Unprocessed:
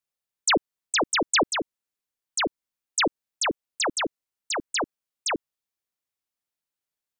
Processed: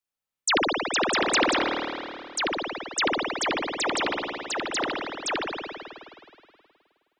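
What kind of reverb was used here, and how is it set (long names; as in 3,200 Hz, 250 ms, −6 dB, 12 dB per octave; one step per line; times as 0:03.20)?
spring reverb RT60 2.3 s, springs 52 ms, chirp 25 ms, DRR −2.5 dB
level −2.5 dB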